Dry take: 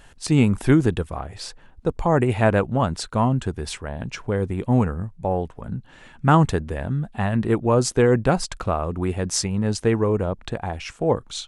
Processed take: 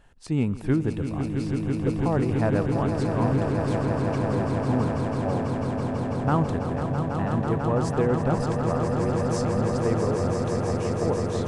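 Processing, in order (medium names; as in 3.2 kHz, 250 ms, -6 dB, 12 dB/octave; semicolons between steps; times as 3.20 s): treble shelf 2.1 kHz -9 dB; echo with a slow build-up 165 ms, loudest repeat 8, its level -8 dB; trim -7 dB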